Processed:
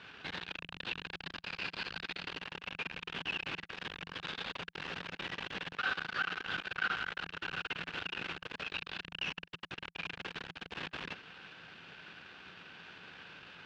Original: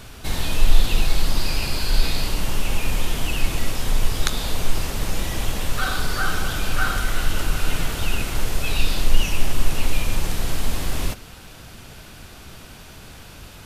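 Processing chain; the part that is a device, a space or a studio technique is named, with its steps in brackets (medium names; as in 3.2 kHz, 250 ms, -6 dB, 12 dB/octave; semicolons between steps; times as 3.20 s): guitar amplifier (valve stage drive 26 dB, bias 0.7; tone controls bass -14 dB, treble +7 dB; cabinet simulation 88–3500 Hz, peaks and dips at 170 Hz +10 dB, 640 Hz -6 dB, 1.6 kHz +8 dB, 2.7 kHz +5 dB); trim -5 dB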